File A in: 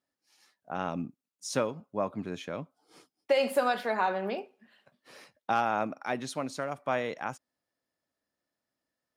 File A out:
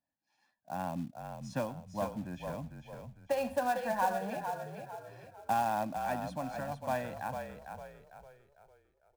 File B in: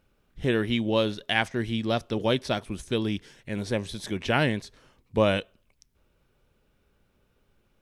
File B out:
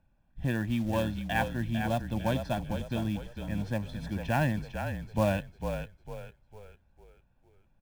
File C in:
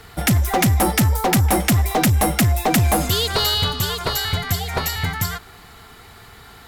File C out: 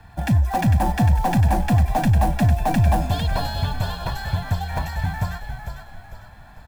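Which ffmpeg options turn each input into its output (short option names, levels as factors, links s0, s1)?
-filter_complex "[0:a]lowpass=f=1100:p=1,aecho=1:1:1.2:0.85,acrossover=split=230[s0][s1];[s1]acrusher=bits=4:mode=log:mix=0:aa=0.000001[s2];[s0][s2]amix=inputs=2:normalize=0,asplit=6[s3][s4][s5][s6][s7][s8];[s4]adelay=451,afreqshift=-38,volume=0.447[s9];[s5]adelay=902,afreqshift=-76,volume=0.178[s10];[s6]adelay=1353,afreqshift=-114,volume=0.0716[s11];[s7]adelay=1804,afreqshift=-152,volume=0.0285[s12];[s8]adelay=2255,afreqshift=-190,volume=0.0115[s13];[s3][s9][s10][s11][s12][s13]amix=inputs=6:normalize=0,volume=0.596"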